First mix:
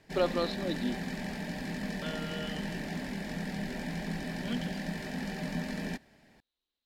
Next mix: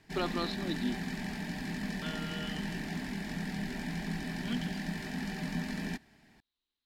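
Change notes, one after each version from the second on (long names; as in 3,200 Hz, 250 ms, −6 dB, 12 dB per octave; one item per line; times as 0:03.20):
master: add parametric band 540 Hz −14 dB 0.34 octaves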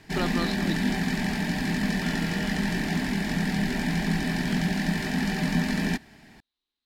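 first voice +3.0 dB
background +10.5 dB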